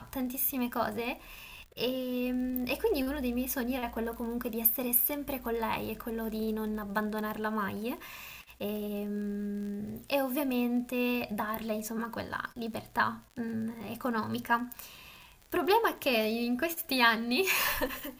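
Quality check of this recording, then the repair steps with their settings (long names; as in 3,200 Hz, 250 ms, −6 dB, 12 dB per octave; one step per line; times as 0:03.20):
surface crackle 34 per second −39 dBFS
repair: click removal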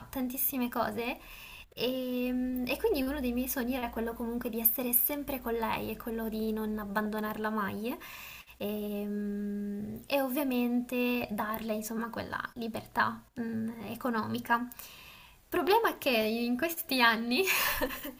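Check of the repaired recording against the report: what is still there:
none of them is left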